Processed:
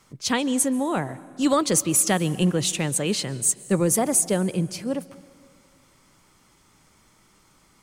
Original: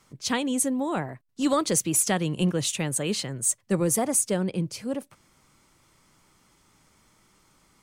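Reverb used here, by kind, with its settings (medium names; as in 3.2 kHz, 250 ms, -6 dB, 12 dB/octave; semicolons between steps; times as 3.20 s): plate-style reverb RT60 2 s, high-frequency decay 0.7×, pre-delay 120 ms, DRR 19 dB; trim +3 dB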